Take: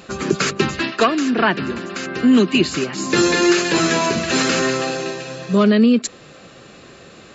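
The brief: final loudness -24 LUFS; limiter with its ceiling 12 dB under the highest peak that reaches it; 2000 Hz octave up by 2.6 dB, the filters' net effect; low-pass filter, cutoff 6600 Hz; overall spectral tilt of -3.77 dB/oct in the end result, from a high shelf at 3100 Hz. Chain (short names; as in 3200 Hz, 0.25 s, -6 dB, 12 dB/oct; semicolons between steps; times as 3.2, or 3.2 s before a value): LPF 6600 Hz; bell 2000 Hz +6.5 dB; high shelf 3100 Hz -9 dB; gain -1 dB; limiter -15.5 dBFS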